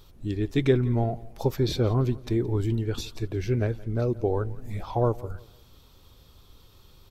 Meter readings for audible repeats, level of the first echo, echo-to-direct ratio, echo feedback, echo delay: 2, −21.0 dB, −20.5 dB, 34%, 171 ms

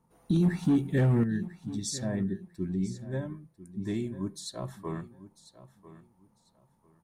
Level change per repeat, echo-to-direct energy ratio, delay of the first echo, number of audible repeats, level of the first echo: −13.0 dB, −16.0 dB, 997 ms, 2, −16.0 dB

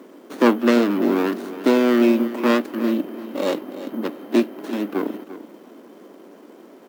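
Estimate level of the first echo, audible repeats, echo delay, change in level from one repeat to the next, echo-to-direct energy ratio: −14.0 dB, 2, 343 ms, −15.0 dB, −14.0 dB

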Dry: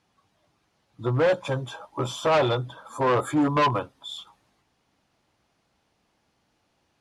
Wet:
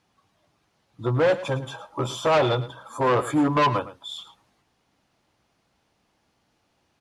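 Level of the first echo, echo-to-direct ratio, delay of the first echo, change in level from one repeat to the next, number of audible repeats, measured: −15.0 dB, −15.0 dB, 109 ms, repeats not evenly spaced, 1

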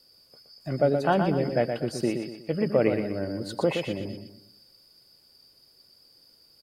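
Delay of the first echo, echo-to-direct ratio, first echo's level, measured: 121 ms, −6.0 dB, −6.5 dB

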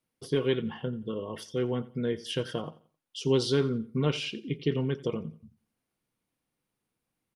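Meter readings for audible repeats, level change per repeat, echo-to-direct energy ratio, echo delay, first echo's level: 2, −10.0 dB, −18.5 dB, 88 ms, −19.0 dB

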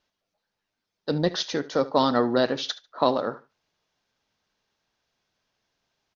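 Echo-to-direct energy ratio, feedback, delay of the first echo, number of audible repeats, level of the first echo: −18.0 dB, 21%, 73 ms, 2, −18.0 dB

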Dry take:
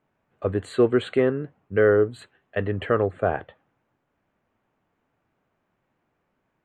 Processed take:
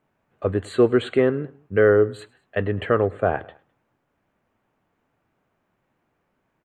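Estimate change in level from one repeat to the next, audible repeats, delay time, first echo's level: −4.5 dB, 2, 104 ms, −24.0 dB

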